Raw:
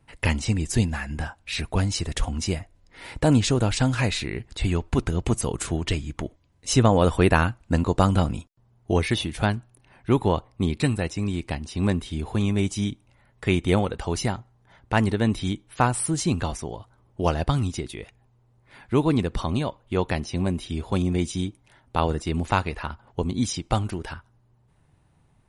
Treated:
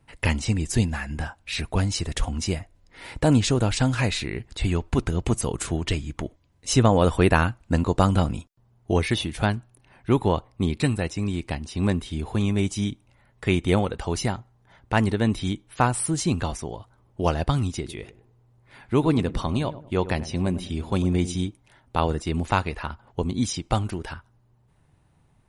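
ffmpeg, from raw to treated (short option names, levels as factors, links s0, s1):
-filter_complex "[0:a]asettb=1/sr,asplit=3[s0][s1][s2];[s0]atrim=end=17.774[s3];[s1]atrim=start=17.77:end=21.47,asetpts=PTS-STARTPTS,afade=t=in:d=0.004:c=qsin,afade=t=out:st=3.696:d=0.004:c=qsin,asplit=2[s4][s5];[s5]adelay=100,lowpass=f=950:p=1,volume=0.224,asplit=2[s6][s7];[s7]adelay=100,lowpass=f=950:p=1,volume=0.41,asplit=2[s8][s9];[s9]adelay=100,lowpass=f=950:p=1,volume=0.41,asplit=2[s10][s11];[s11]adelay=100,lowpass=f=950:p=1,volume=0.41[s12];[s4][s6][s8][s10][s12]amix=inputs=5:normalize=0,atrim=end_sample=163170[s13];[s2]atrim=start=21.466[s14];[s3][s13]acrossfade=d=0.004:c1=hsin:c2=qsin[s15];[s15][s14]acrossfade=d=0.004:c1=qsin:c2=hsin"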